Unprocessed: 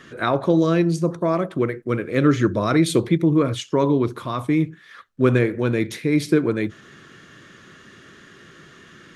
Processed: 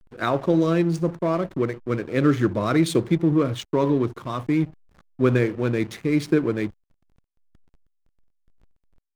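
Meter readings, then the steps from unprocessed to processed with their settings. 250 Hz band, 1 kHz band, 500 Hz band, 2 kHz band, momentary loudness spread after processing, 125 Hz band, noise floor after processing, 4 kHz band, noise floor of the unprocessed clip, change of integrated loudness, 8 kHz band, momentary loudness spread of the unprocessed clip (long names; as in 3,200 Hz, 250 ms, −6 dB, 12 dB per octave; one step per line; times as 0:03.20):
−2.0 dB, −2.5 dB, −2.0 dB, −3.0 dB, 7 LU, −2.0 dB, −75 dBFS, −3.5 dB, −48 dBFS, −2.0 dB, −4.5 dB, 6 LU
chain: slack as between gear wheels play −30.5 dBFS
level −2 dB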